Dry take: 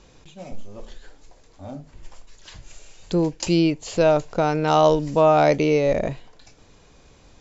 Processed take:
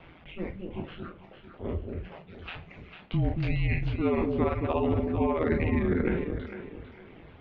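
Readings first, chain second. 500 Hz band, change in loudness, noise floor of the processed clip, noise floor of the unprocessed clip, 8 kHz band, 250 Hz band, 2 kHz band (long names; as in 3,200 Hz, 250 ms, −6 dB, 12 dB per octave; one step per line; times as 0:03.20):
−10.5 dB, −9.5 dB, −52 dBFS, −53 dBFS, can't be measured, −5.0 dB, −5.0 dB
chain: peak hold with a decay on every bin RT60 0.63 s
ring modulation 85 Hz
low-shelf EQ 240 Hz −6 dB
reversed playback
downward compressor 10 to 1, threshold −29 dBFS, peak gain reduction 15.5 dB
reversed playback
reverb reduction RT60 1.4 s
on a send: delay that swaps between a low-pass and a high-pass 225 ms, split 860 Hz, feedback 55%, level −3.5 dB
on the sum: single-sideband voice off tune −280 Hz 150–3,200 Hz
level +8 dB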